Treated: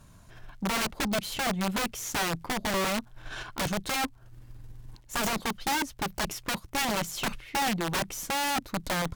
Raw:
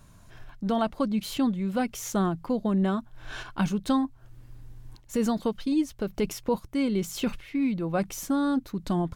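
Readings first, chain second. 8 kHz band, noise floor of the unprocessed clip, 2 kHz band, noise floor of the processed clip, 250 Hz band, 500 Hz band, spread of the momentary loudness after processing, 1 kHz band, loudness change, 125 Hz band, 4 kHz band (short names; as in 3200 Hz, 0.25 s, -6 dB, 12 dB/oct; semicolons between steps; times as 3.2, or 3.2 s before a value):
+6.5 dB, -53 dBFS, +9.0 dB, -54 dBFS, -8.5 dB, -4.5 dB, 5 LU, +3.0 dB, -1.5 dB, -4.0 dB, +8.0 dB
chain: crackle 100/s -54 dBFS; wrapped overs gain 23 dB; added harmonics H 6 -24 dB, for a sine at -23 dBFS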